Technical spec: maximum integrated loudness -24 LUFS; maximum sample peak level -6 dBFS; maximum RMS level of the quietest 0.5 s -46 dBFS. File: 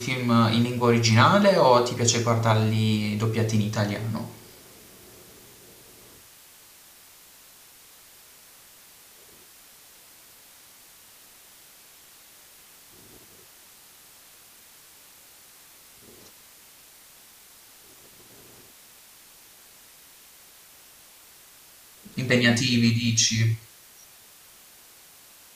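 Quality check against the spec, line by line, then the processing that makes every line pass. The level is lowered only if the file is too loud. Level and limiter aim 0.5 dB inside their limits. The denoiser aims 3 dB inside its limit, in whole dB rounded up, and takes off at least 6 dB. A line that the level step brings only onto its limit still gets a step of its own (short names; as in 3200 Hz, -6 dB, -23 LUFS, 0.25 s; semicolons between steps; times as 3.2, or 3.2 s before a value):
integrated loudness -21.5 LUFS: fail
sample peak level -5.5 dBFS: fail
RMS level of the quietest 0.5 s -52 dBFS: OK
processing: gain -3 dB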